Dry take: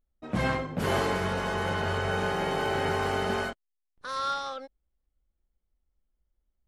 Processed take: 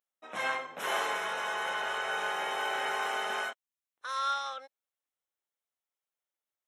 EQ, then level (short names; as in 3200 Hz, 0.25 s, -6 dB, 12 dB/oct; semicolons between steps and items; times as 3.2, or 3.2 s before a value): HPF 810 Hz 12 dB/oct; Butterworth band-stop 4600 Hz, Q 4.8; 0.0 dB